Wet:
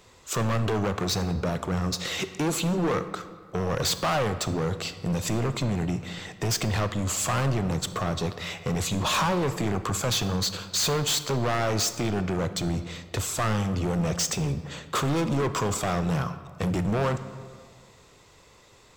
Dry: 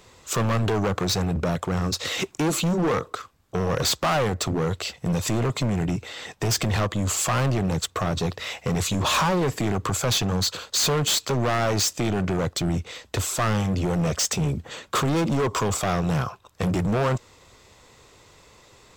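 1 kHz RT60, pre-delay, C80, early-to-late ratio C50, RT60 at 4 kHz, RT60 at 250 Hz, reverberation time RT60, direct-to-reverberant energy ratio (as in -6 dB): 1.8 s, 23 ms, 13.5 dB, 12.5 dB, 1.0 s, 1.9 s, 1.8 s, 11.0 dB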